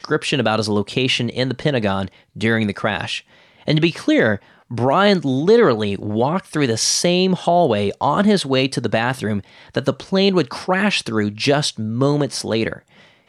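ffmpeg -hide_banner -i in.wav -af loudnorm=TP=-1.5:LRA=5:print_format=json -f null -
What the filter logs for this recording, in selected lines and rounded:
"input_i" : "-18.7",
"input_tp" : "-4.4",
"input_lra" : "3.3",
"input_thresh" : "-29.0",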